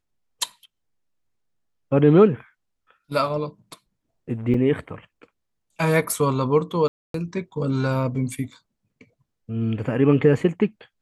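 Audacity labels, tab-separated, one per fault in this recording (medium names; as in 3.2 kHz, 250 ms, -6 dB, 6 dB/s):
4.540000	4.540000	dropout 3.2 ms
6.880000	7.140000	dropout 263 ms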